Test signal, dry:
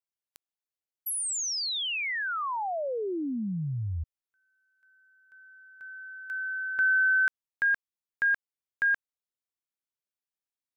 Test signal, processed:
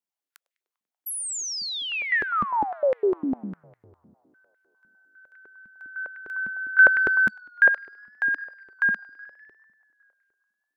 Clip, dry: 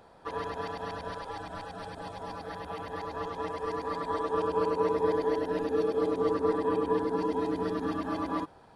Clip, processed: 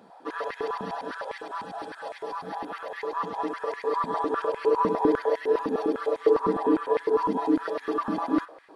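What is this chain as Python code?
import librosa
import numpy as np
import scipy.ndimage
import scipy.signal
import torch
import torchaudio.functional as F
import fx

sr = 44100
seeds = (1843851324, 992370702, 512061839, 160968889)

y = fx.echo_tape(x, sr, ms=99, feedback_pct=86, wet_db=-21.0, lp_hz=3800.0, drive_db=19.0, wow_cents=39)
y = fx.filter_held_highpass(y, sr, hz=9.9, low_hz=210.0, high_hz=2000.0)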